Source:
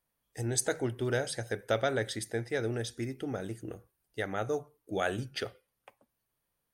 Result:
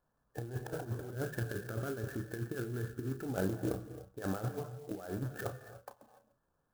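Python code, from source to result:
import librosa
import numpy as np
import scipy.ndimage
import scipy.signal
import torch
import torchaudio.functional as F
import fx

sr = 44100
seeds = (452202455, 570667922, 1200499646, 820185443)

y = fx.rattle_buzz(x, sr, strikes_db=-43.0, level_db=-36.0)
y = fx.env_lowpass_down(y, sr, base_hz=1100.0, full_db=-25.5)
y = fx.band_shelf(y, sr, hz=690.0, db=-11.0, octaves=1.2, at=(1.15, 3.23))
y = fx.over_compress(y, sr, threshold_db=-38.0, ratio=-0.5)
y = fx.brickwall_lowpass(y, sr, high_hz=1800.0)
y = fx.doubler(y, sr, ms=32.0, db=-10)
y = fx.rev_gated(y, sr, seeds[0], gate_ms=320, shape='rising', drr_db=11.0)
y = fx.clock_jitter(y, sr, seeds[1], jitter_ms=0.048)
y = y * librosa.db_to_amplitude(1.5)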